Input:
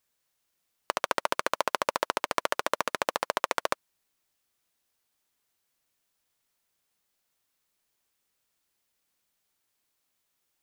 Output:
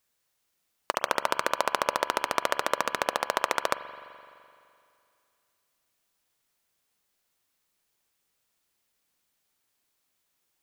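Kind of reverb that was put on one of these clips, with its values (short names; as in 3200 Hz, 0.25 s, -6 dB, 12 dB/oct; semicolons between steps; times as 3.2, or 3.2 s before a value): spring tank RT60 2.5 s, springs 42 ms, chirp 40 ms, DRR 11 dB; gain +1.5 dB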